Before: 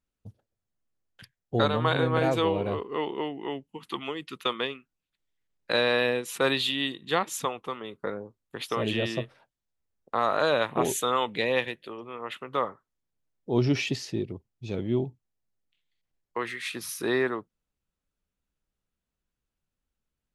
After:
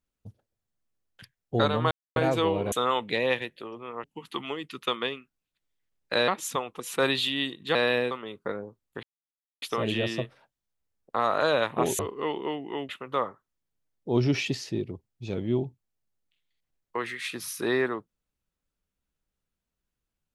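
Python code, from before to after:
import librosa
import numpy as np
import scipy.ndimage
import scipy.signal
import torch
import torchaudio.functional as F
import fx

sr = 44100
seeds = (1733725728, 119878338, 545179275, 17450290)

y = fx.edit(x, sr, fx.silence(start_s=1.91, length_s=0.25),
    fx.swap(start_s=2.72, length_s=0.9, other_s=10.98, other_length_s=1.32),
    fx.swap(start_s=5.86, length_s=0.36, other_s=7.17, other_length_s=0.52),
    fx.insert_silence(at_s=8.61, length_s=0.59), tone=tone)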